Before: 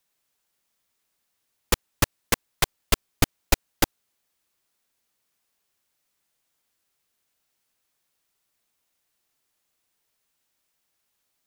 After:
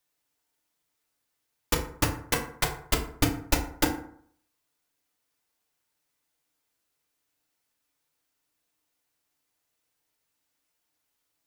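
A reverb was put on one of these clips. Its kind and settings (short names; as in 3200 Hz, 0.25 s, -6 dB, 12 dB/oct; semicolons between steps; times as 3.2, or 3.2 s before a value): FDN reverb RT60 0.61 s, low-frequency decay 1×, high-frequency decay 0.5×, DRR 0 dB; gain -5 dB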